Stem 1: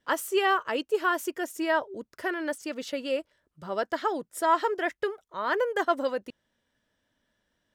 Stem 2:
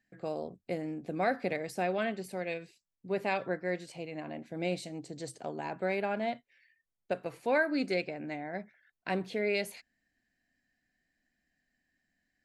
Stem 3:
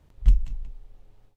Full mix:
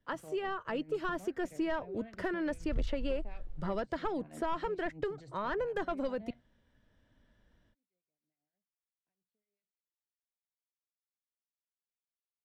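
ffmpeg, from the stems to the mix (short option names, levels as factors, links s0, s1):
-filter_complex "[0:a]dynaudnorm=f=480:g=3:m=3.16,volume=0.422,asplit=2[s0][s1];[1:a]acompressor=threshold=0.0126:ratio=5,acrossover=split=1100[s2][s3];[s2]aeval=exprs='val(0)*(1-0.7/2+0.7/2*cos(2*PI*6.4*n/s))':c=same[s4];[s3]aeval=exprs='val(0)*(1-0.7/2-0.7/2*cos(2*PI*6.4*n/s))':c=same[s5];[s4][s5]amix=inputs=2:normalize=0,volume=0.531[s6];[2:a]adelay=2500,volume=0.631[s7];[s1]apad=whole_len=548637[s8];[s6][s8]sidechaingate=range=0.00501:threshold=0.002:ratio=16:detection=peak[s9];[s0][s9][s7]amix=inputs=3:normalize=0,asoftclip=type=tanh:threshold=0.133,aemphasis=mode=reproduction:type=bsi,acrossover=split=190|3100[s10][s11][s12];[s10]acompressor=threshold=0.0158:ratio=4[s13];[s11]acompressor=threshold=0.02:ratio=4[s14];[s12]acompressor=threshold=0.00141:ratio=4[s15];[s13][s14][s15]amix=inputs=3:normalize=0"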